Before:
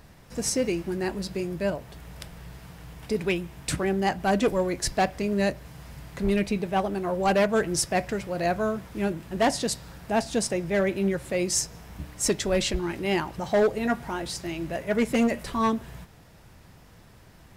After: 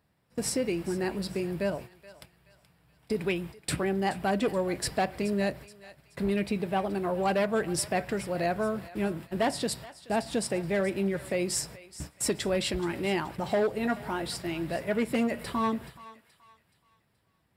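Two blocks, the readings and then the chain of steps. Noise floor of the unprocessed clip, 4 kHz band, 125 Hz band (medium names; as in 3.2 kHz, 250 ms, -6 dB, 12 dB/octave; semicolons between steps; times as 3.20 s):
-52 dBFS, -3.5 dB, -3.0 dB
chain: high-pass 77 Hz; gate -39 dBFS, range -19 dB; peaking EQ 6.3 kHz -13.5 dB 0.23 oct; compression 2:1, threshold -27 dBFS, peak gain reduction 5.5 dB; on a send: thinning echo 426 ms, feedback 41%, high-pass 1 kHz, level -15 dB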